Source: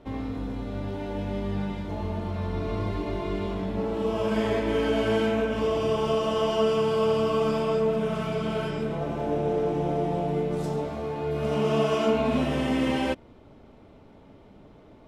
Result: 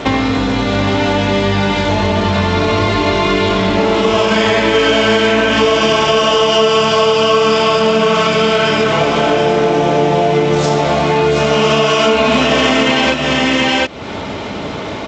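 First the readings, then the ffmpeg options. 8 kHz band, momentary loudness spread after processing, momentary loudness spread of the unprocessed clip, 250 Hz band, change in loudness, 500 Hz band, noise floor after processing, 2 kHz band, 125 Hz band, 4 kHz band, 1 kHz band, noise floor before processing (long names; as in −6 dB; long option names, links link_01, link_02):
can't be measured, 4 LU, 8 LU, +12.5 dB, +14.5 dB, +13.0 dB, −23 dBFS, +21.5 dB, +12.0 dB, +23.0 dB, +17.5 dB, −52 dBFS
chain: -af "lowpass=frequency=1500:poles=1,tiltshelf=frequency=1100:gain=-9,aecho=1:1:724:0.501,crystalizer=i=2.5:c=0,acompressor=threshold=-46dB:ratio=4,highpass=70,alimiter=level_in=34.5dB:limit=-1dB:release=50:level=0:latency=1,volume=-1dB" -ar 16000 -c:a g722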